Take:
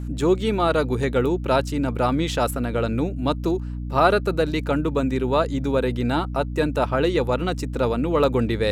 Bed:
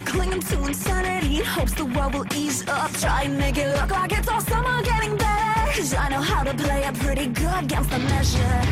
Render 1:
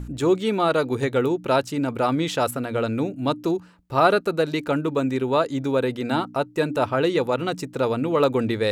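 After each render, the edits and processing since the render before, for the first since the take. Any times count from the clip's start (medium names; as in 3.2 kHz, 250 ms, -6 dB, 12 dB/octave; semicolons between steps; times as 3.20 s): de-hum 60 Hz, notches 5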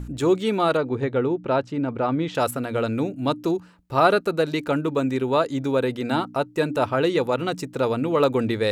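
0.77–2.35 s: tape spacing loss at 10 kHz 24 dB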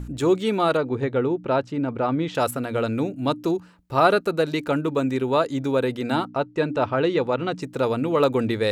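6.27–7.62 s: distance through air 110 m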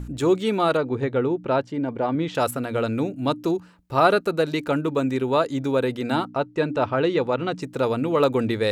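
1.62–2.15 s: comb of notches 1.3 kHz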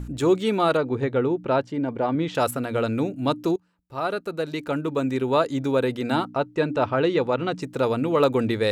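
3.56–5.33 s: fade in, from -22 dB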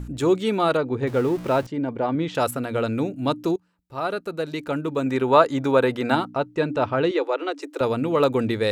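1.07–1.67 s: jump at every zero crossing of -33.5 dBFS; 5.06–6.15 s: peaking EQ 1.1 kHz +7.5 dB 2.3 oct; 7.11–7.81 s: Chebyshev high-pass 280 Hz, order 10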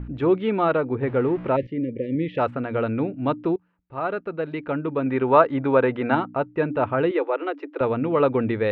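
1.56–2.39 s: spectral selection erased 600–1700 Hz; low-pass 2.6 kHz 24 dB/octave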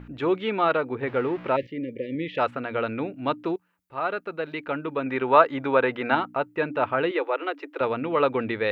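tilt EQ +3 dB/octave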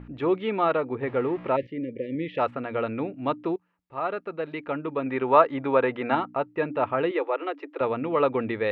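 low-pass 2.1 kHz 6 dB/octave; band-stop 1.5 kHz, Q 10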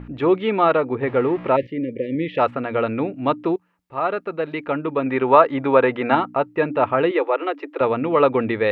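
trim +6.5 dB; peak limiter -1 dBFS, peak gain reduction 2.5 dB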